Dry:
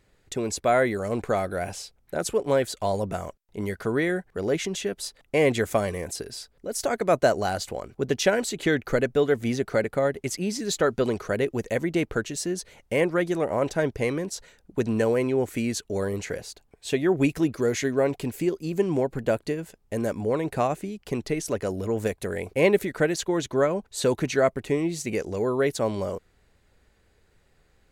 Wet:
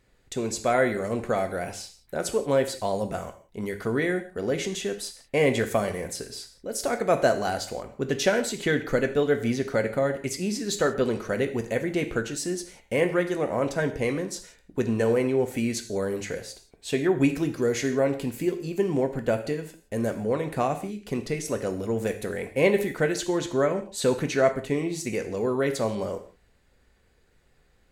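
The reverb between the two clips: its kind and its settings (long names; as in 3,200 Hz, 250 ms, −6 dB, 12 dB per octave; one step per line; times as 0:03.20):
reverb whose tail is shaped and stops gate 200 ms falling, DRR 6 dB
level −1.5 dB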